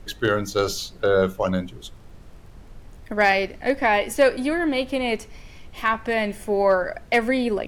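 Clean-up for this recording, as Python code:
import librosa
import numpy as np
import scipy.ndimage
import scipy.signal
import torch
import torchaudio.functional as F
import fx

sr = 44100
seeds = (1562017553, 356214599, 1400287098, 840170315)

y = fx.fix_declip(x, sr, threshold_db=-8.5)
y = fx.fix_declick_ar(y, sr, threshold=6.5)
y = fx.noise_reduce(y, sr, print_start_s=1.97, print_end_s=2.47, reduce_db=24.0)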